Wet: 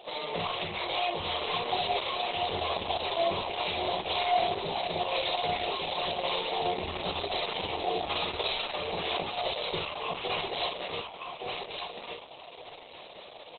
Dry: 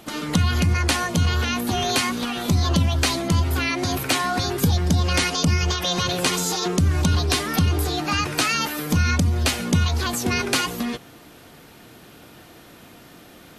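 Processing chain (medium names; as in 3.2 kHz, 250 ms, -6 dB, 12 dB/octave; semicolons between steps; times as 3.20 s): self-modulated delay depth 0.54 ms; high-pass 430 Hz 12 dB/octave; treble shelf 6.9 kHz +4 dB; in parallel at -2 dB: compression 8:1, threshold -35 dBFS, peak gain reduction 18.5 dB; 9.81–10.24 s: on the sum: static phaser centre 2.6 kHz, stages 8; saturation -16.5 dBFS, distortion -12 dB; chorus 0.22 Hz, delay 18 ms, depth 4.2 ms; static phaser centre 630 Hz, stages 4; doubling 49 ms -4 dB; on a send: feedback delay 1170 ms, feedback 21%, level -4.5 dB; on the sum: trim +4 dB; Opus 8 kbps 48 kHz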